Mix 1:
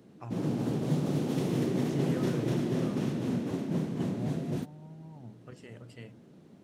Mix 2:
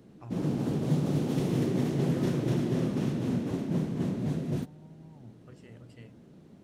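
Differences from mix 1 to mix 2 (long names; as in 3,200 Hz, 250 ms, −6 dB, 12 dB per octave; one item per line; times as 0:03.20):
speech −5.5 dB
master: remove high-pass filter 130 Hz 6 dB per octave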